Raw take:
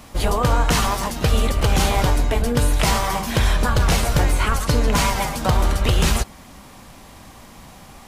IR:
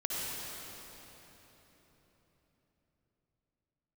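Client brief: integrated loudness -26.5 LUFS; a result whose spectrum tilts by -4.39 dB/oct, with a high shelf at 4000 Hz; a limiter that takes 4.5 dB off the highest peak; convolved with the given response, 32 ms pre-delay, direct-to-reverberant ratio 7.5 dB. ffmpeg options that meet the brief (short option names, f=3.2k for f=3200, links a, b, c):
-filter_complex "[0:a]highshelf=f=4k:g=4,alimiter=limit=-10.5dB:level=0:latency=1,asplit=2[a][b];[1:a]atrim=start_sample=2205,adelay=32[c];[b][c]afir=irnorm=-1:irlink=0,volume=-13dB[d];[a][d]amix=inputs=2:normalize=0,volume=-6.5dB"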